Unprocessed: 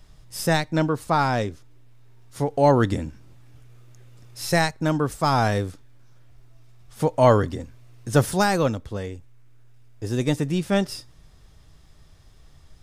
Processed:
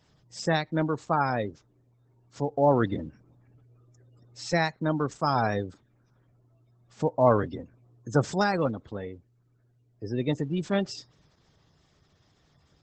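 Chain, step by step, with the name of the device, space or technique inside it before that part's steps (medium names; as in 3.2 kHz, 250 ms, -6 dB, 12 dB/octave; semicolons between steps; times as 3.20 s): noise-suppressed video call (high-pass 120 Hz 12 dB/octave; spectral gate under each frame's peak -25 dB strong; trim -4 dB; Opus 12 kbps 48 kHz)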